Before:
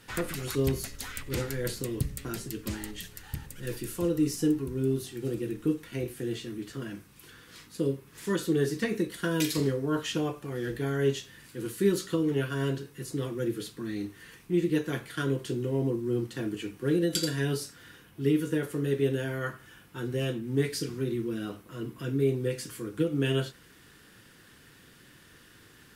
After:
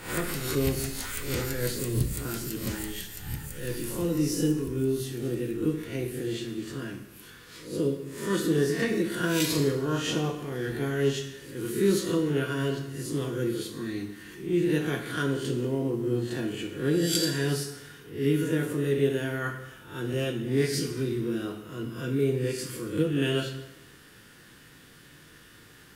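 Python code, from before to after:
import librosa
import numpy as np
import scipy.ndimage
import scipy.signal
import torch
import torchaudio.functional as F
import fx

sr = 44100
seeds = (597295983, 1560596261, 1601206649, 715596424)

y = fx.spec_swells(x, sr, rise_s=0.48)
y = fx.rev_plate(y, sr, seeds[0], rt60_s=0.98, hf_ratio=0.9, predelay_ms=0, drr_db=5.5)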